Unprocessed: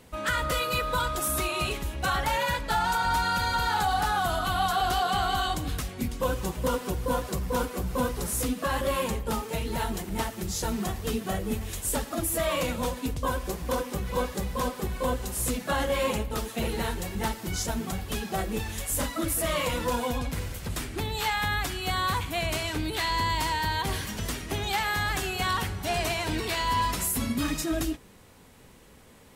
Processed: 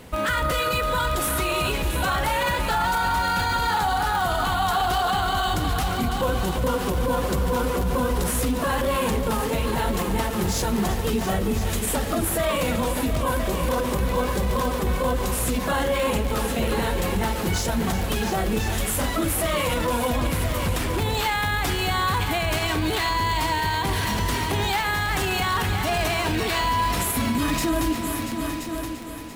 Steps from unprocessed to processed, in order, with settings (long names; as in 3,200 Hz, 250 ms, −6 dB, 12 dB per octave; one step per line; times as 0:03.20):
in parallel at −8.5 dB: sample-rate reduction 11,000 Hz, jitter 0%
on the sum: echo machine with several playback heads 341 ms, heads all three, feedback 41%, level −15 dB
brickwall limiter −22 dBFS, peak gain reduction 9.5 dB
surface crackle 15 per second −28 dBFS
level +7 dB